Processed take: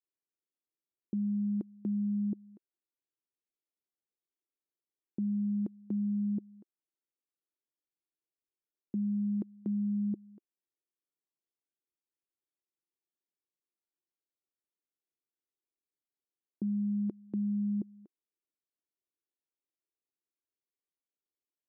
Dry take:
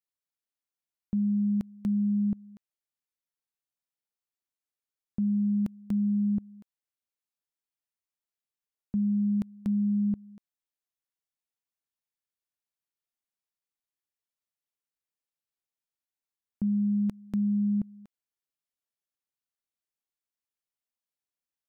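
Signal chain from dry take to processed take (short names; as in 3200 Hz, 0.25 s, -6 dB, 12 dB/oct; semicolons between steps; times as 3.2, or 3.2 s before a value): band-pass 350 Hz, Q 3.4; gain +6.5 dB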